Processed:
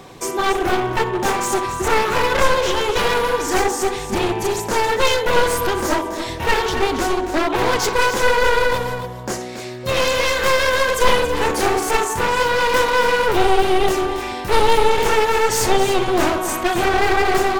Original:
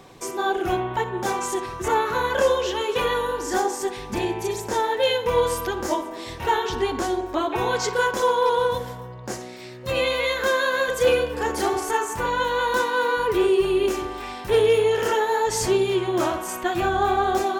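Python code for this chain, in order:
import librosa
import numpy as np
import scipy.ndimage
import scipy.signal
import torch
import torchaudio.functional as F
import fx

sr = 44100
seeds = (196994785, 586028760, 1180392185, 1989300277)

y = np.minimum(x, 2.0 * 10.0 ** (-24.5 / 20.0) - x)
y = y + 10.0 ** (-10.5 / 20.0) * np.pad(y, (int(278 * sr / 1000.0), 0))[:len(y)]
y = F.gain(torch.from_numpy(y), 7.0).numpy()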